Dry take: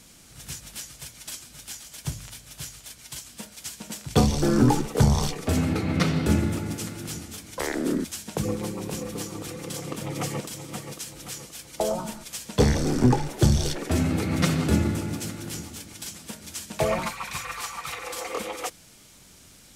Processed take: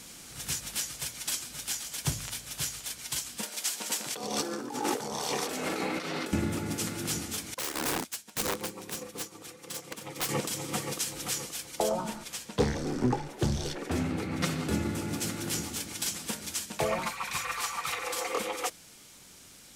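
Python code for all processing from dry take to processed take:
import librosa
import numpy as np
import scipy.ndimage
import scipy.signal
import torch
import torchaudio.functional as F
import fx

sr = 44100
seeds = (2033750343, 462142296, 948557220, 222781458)

y = fx.chain(x, sr, fx.highpass(hz=360.0, slope=12),
    fx.echo_alternate(ms=103, hz=940.0, feedback_pct=51, wet_db=-5),
    fx.over_compress(threshold_db=-34.0, ratio=-1.0), at=(3.43, 6.33))
y = fx.chain(y, sr, fx.low_shelf(hz=420.0, db=-6.5),
    fx.overflow_wrap(gain_db=25.5),
    fx.upward_expand(threshold_db=-42.0, expansion=2.5), at=(7.54, 10.29))
y = fx.chain(y, sr, fx.high_shelf(hz=3900.0, db=-5.5),
    fx.doppler_dist(depth_ms=0.21), at=(11.89, 14.41))
y = fx.low_shelf(y, sr, hz=170.0, db=-8.5)
y = fx.notch(y, sr, hz=630.0, q=18.0)
y = fx.rider(y, sr, range_db=5, speed_s=0.5)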